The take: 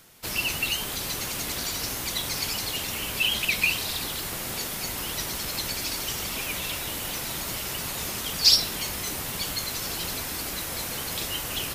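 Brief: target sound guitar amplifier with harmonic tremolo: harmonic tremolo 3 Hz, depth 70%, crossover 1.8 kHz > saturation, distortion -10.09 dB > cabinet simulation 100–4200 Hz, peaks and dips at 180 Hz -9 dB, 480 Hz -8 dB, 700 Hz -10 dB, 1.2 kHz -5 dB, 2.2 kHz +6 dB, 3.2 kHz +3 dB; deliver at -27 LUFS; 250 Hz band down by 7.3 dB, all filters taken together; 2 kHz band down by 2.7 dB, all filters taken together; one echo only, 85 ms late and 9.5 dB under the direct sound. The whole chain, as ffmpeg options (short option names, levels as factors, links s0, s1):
-filter_complex "[0:a]equalizer=f=250:t=o:g=-6,equalizer=f=2000:t=o:g=-8,aecho=1:1:85:0.335,acrossover=split=1800[s0][s1];[s0]aeval=exprs='val(0)*(1-0.7/2+0.7/2*cos(2*PI*3*n/s))':c=same[s2];[s1]aeval=exprs='val(0)*(1-0.7/2-0.7/2*cos(2*PI*3*n/s))':c=same[s3];[s2][s3]amix=inputs=2:normalize=0,asoftclip=threshold=0.1,highpass=100,equalizer=f=180:t=q:w=4:g=-9,equalizer=f=480:t=q:w=4:g=-8,equalizer=f=700:t=q:w=4:g=-10,equalizer=f=1200:t=q:w=4:g=-5,equalizer=f=2200:t=q:w=4:g=6,equalizer=f=3200:t=q:w=4:g=3,lowpass=f=4200:w=0.5412,lowpass=f=4200:w=1.3066,volume=2.82"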